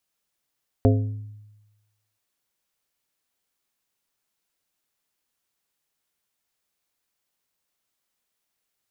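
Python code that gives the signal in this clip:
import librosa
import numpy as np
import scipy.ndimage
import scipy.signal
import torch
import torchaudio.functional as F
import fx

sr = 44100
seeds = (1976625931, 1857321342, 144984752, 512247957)

y = fx.strike_glass(sr, length_s=1.33, level_db=-14, body='plate', hz=105.0, decay_s=1.12, tilt_db=2.5, modes=5)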